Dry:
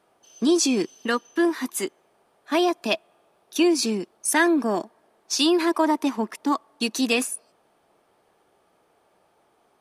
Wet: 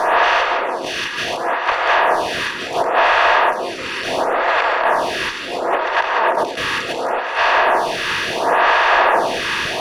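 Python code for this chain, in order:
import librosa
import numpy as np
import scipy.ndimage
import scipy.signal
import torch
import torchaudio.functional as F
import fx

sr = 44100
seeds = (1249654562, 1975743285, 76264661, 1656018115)

p1 = fx.bin_compress(x, sr, power=0.2)
p2 = scipy.signal.sosfilt(scipy.signal.butter(4, 610.0, 'highpass', fs=sr, output='sos'), p1)
p3 = fx.high_shelf(p2, sr, hz=8900.0, db=9.5)
p4 = fx.over_compress(p3, sr, threshold_db=-20.0, ratio=-0.5)
p5 = fx.fold_sine(p4, sr, drive_db=13, ceiling_db=2.0)
p6 = fx.air_absorb(p5, sr, metres=320.0)
p7 = fx.echo_pitch(p6, sr, ms=118, semitones=-5, count=2, db_per_echo=-6.0)
p8 = p7 + fx.echo_single(p7, sr, ms=201, db=-9.5, dry=0)
p9 = fx.stagger_phaser(p8, sr, hz=0.71)
y = F.gain(torch.from_numpy(p9), -6.5).numpy()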